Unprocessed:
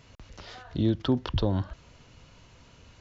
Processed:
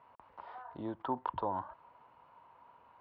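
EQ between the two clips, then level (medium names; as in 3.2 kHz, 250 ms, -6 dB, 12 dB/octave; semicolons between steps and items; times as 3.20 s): band-pass filter 940 Hz, Q 5.1; distance through air 310 m; +9.5 dB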